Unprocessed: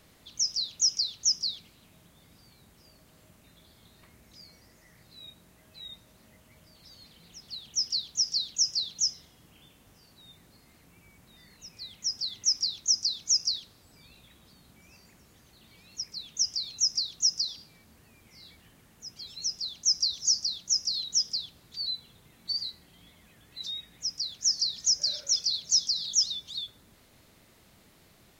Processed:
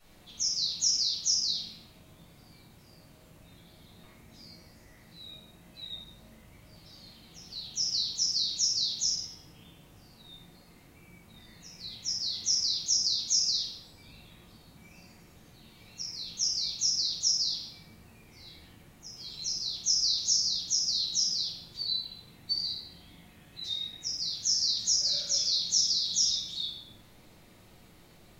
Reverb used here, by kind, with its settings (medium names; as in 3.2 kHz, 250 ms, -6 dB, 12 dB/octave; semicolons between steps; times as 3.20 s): simulated room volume 360 m³, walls mixed, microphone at 6.5 m; trim -12.5 dB